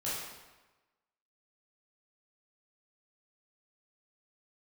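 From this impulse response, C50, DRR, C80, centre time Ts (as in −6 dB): −1.0 dB, −9.5 dB, 2.0 dB, 85 ms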